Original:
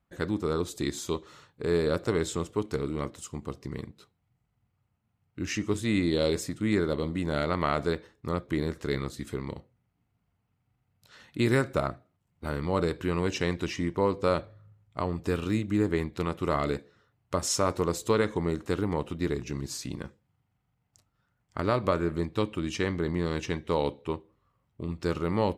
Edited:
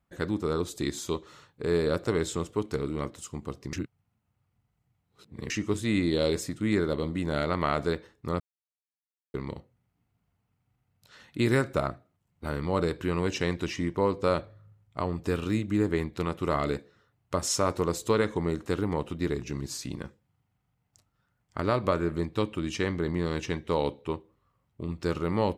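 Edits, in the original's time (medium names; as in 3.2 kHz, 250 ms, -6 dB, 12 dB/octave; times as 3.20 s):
3.73–5.50 s: reverse
8.40–9.34 s: mute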